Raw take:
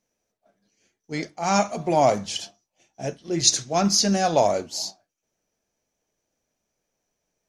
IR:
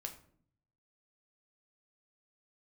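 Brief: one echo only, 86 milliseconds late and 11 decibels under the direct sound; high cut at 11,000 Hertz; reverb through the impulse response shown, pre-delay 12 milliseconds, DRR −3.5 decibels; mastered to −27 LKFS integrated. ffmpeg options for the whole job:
-filter_complex "[0:a]lowpass=11000,aecho=1:1:86:0.282,asplit=2[link_01][link_02];[1:a]atrim=start_sample=2205,adelay=12[link_03];[link_02][link_03]afir=irnorm=-1:irlink=0,volume=6dB[link_04];[link_01][link_04]amix=inputs=2:normalize=0,volume=-9.5dB"

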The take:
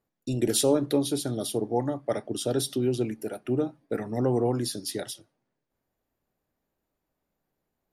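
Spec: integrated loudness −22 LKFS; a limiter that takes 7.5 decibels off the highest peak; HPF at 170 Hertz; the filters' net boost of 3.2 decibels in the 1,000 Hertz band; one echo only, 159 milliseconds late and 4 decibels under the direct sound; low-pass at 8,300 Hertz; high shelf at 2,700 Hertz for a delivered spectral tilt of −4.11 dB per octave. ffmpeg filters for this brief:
ffmpeg -i in.wav -af "highpass=170,lowpass=8300,equalizer=frequency=1000:width_type=o:gain=4,highshelf=frequency=2700:gain=4.5,alimiter=limit=-18dB:level=0:latency=1,aecho=1:1:159:0.631,volume=6.5dB" out.wav

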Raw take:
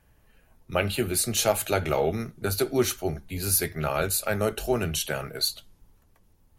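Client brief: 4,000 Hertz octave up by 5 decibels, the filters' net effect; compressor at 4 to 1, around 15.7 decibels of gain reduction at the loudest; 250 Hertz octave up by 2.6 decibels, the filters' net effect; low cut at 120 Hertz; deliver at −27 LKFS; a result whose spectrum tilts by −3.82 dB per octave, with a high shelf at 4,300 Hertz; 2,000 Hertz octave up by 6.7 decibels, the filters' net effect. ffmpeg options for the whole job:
ffmpeg -i in.wav -af "highpass=120,equalizer=frequency=250:width_type=o:gain=4,equalizer=frequency=2000:width_type=o:gain=8.5,equalizer=frequency=4000:width_type=o:gain=6.5,highshelf=frequency=4300:gain=-5.5,acompressor=threshold=-36dB:ratio=4,volume=10dB" out.wav

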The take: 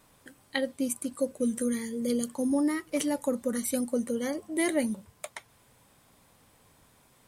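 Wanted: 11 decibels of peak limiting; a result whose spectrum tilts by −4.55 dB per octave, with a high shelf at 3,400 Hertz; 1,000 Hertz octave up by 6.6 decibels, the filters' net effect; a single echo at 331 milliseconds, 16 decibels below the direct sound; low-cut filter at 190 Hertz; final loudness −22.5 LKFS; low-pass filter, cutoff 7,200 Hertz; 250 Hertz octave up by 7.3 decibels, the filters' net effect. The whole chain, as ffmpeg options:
ffmpeg -i in.wav -af "highpass=190,lowpass=7200,equalizer=frequency=250:width_type=o:gain=9,equalizer=frequency=1000:width_type=o:gain=7.5,highshelf=frequency=3400:gain=4,alimiter=limit=-21.5dB:level=0:latency=1,aecho=1:1:331:0.158,volume=7.5dB" out.wav

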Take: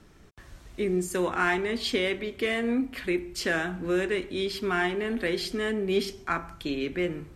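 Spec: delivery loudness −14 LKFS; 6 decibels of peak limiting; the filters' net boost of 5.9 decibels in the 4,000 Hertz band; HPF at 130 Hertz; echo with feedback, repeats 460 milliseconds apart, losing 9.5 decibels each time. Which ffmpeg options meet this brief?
ffmpeg -i in.wav -af "highpass=130,equalizer=frequency=4000:width_type=o:gain=7.5,alimiter=limit=-18dB:level=0:latency=1,aecho=1:1:460|920|1380|1840:0.335|0.111|0.0365|0.012,volume=14dB" out.wav

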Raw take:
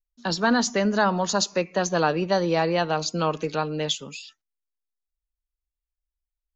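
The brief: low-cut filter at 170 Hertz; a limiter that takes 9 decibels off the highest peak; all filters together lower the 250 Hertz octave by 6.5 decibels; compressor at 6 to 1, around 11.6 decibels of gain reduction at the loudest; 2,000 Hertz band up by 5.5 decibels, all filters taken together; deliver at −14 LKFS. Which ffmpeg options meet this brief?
ffmpeg -i in.wav -af "highpass=170,equalizer=frequency=250:width_type=o:gain=-7.5,equalizer=frequency=2000:width_type=o:gain=7.5,acompressor=threshold=-28dB:ratio=6,volume=21.5dB,alimiter=limit=-3.5dB:level=0:latency=1" out.wav

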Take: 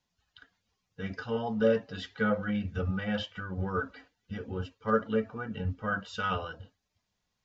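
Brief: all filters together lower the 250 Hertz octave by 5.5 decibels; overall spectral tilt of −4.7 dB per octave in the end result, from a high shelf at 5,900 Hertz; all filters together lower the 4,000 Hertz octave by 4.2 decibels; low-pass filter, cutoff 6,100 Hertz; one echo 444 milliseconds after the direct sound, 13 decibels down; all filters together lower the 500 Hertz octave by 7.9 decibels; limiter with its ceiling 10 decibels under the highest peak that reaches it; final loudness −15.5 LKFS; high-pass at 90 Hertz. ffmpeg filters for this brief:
ffmpeg -i in.wav -af "highpass=90,lowpass=6100,equalizer=frequency=250:width_type=o:gain=-5.5,equalizer=frequency=500:width_type=o:gain=-7.5,equalizer=frequency=4000:width_type=o:gain=-8,highshelf=frequency=5900:gain=7.5,alimiter=level_in=3dB:limit=-24dB:level=0:latency=1,volume=-3dB,aecho=1:1:444:0.224,volume=23.5dB" out.wav

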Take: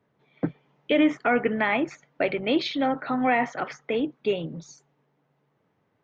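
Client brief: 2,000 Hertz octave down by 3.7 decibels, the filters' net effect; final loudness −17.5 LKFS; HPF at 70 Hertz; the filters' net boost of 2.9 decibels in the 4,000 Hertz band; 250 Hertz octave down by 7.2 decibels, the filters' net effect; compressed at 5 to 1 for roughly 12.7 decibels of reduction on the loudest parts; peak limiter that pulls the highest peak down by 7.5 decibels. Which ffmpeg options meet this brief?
ffmpeg -i in.wav -af "highpass=70,equalizer=frequency=250:width_type=o:gain=-9,equalizer=frequency=2000:width_type=o:gain=-6,equalizer=frequency=4000:width_type=o:gain=6,acompressor=threshold=-35dB:ratio=5,volume=23dB,alimiter=limit=-5.5dB:level=0:latency=1" out.wav

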